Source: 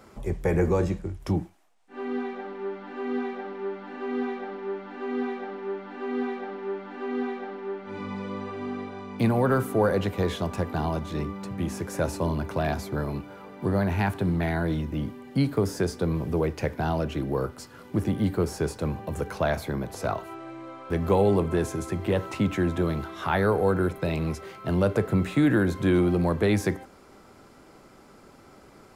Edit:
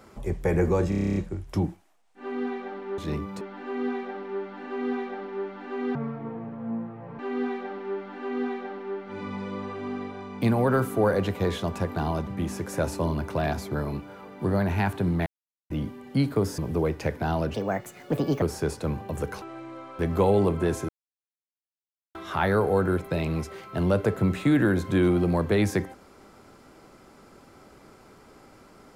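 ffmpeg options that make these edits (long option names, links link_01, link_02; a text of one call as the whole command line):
ffmpeg -i in.wav -filter_complex "[0:a]asplit=23[link_01][link_02][link_03][link_04][link_05][link_06][link_07][link_08][link_09][link_10][link_11][link_12][link_13][link_14][link_15][link_16][link_17][link_18][link_19][link_20][link_21][link_22][link_23];[link_01]atrim=end=0.922[link_24];[link_02]atrim=start=0.888:end=0.922[link_25];[link_03]atrim=start=0.888:end=0.922[link_26];[link_04]atrim=start=0.888:end=0.922[link_27];[link_05]atrim=start=0.888:end=0.922[link_28];[link_06]atrim=start=0.888:end=0.922[link_29];[link_07]atrim=start=0.888:end=0.922[link_30];[link_08]atrim=start=0.888:end=0.922[link_31];[link_09]atrim=start=0.888:end=0.922[link_32];[link_10]atrim=start=0.888:end=2.712[link_33];[link_11]atrim=start=11.048:end=11.482[link_34];[link_12]atrim=start=2.708:end=5.254[link_35];[link_13]atrim=start=5.25:end=5.97,asetpts=PTS-STARTPTS,asetrate=25578,aresample=44100[link_36];[link_14]atrim=start=5.966:end=11.052[link_37];[link_15]atrim=start=11.478:end=14.47,asetpts=PTS-STARTPTS,afade=type=out:start_time=2.988:duration=0.004:curve=hsin[link_38];[link_16]atrim=start=14.47:end=14.91,asetpts=PTS-STARTPTS,volume=0[link_39];[link_17]atrim=start=14.91:end=15.792,asetpts=PTS-STARTPTS,afade=type=in:duration=0.004:curve=hsin[link_40];[link_18]atrim=start=16.158:end=17.124[link_41];[link_19]atrim=start=17.12:end=18.4,asetpts=PTS-STARTPTS,asetrate=64386,aresample=44100,atrim=end_sample=38663,asetpts=PTS-STARTPTS[link_42];[link_20]atrim=start=18.396:end=19.402[link_43];[link_21]atrim=start=20.328:end=21.8,asetpts=PTS-STARTPTS,afade=type=out:start_time=1.468:duration=0.004:curve=hsin[link_44];[link_22]atrim=start=21.8:end=23.06,asetpts=PTS-STARTPTS,volume=0[link_45];[link_23]atrim=start=23.06,asetpts=PTS-STARTPTS,afade=type=in:duration=0.004:curve=hsin[link_46];[link_24][link_25]acrossfade=duration=0.004:curve1=hsin:curve2=hsin[link_47];[link_47][link_26]acrossfade=duration=0.004:curve1=hsin:curve2=hsin[link_48];[link_48][link_27]acrossfade=duration=0.004:curve1=hsin:curve2=hsin[link_49];[link_49][link_28]acrossfade=duration=0.004:curve1=hsin:curve2=hsin[link_50];[link_50][link_29]acrossfade=duration=0.004:curve1=hsin:curve2=hsin[link_51];[link_51][link_30]acrossfade=duration=0.004:curve1=hsin:curve2=hsin[link_52];[link_52][link_31]acrossfade=duration=0.004:curve1=hsin:curve2=hsin[link_53];[link_53][link_32]acrossfade=duration=0.004:curve1=hsin:curve2=hsin[link_54];[link_54][link_33]acrossfade=duration=0.004:curve1=hsin:curve2=hsin[link_55];[link_55][link_34]acrossfade=duration=0.004:curve1=hsin:curve2=hsin[link_56];[link_56][link_35]acrossfade=duration=0.004:curve1=hsin:curve2=hsin[link_57];[link_57][link_36]acrossfade=duration=0.004:curve1=hsin:curve2=hsin[link_58];[link_58][link_37]acrossfade=duration=0.004:curve1=hsin:curve2=hsin[link_59];[link_38][link_39][link_40]concat=n=3:v=0:a=1[link_60];[link_59][link_60]acrossfade=duration=0.004:curve1=hsin:curve2=hsin[link_61];[link_61][link_41]acrossfade=duration=0.004:curve1=hsin:curve2=hsin[link_62];[link_62][link_42]acrossfade=duration=0.004:curve1=hsin:curve2=hsin[link_63];[link_63][link_43]acrossfade=duration=0.004:curve1=hsin:curve2=hsin[link_64];[link_44][link_45][link_46]concat=n=3:v=0:a=1[link_65];[link_64][link_65]acrossfade=duration=0.004:curve1=hsin:curve2=hsin" out.wav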